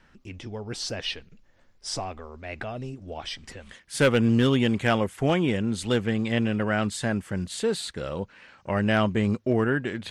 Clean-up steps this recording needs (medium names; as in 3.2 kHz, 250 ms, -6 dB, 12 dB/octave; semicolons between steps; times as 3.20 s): clip repair -13 dBFS